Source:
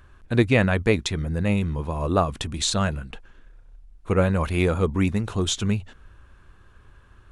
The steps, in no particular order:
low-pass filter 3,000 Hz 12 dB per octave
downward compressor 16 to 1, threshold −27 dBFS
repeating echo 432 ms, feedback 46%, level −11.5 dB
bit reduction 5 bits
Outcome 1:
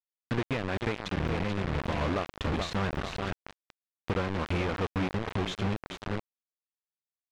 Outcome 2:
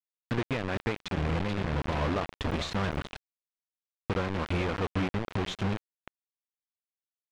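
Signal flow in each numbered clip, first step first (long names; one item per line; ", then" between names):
repeating echo, then downward compressor, then bit reduction, then low-pass filter
downward compressor, then repeating echo, then bit reduction, then low-pass filter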